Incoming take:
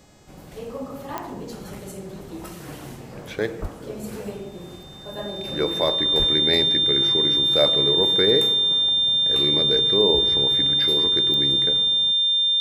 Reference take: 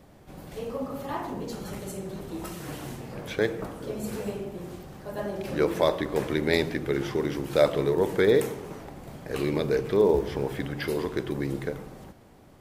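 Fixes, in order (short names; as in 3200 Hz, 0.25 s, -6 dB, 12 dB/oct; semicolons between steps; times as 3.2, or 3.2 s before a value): de-click; de-hum 420.2 Hz, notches 20; notch 3600 Hz, Q 30; de-plosive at 3.61/6.18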